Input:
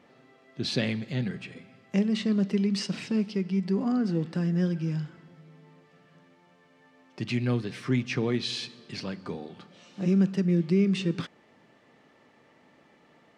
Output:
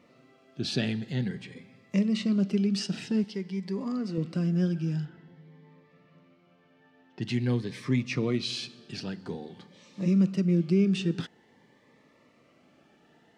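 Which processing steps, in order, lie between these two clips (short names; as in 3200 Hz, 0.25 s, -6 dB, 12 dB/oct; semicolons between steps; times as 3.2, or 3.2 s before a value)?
3.24–4.18 low shelf 290 Hz -9 dB; 5.05–7.22 LPF 3600 Hz 12 dB/oct; cascading phaser rising 0.49 Hz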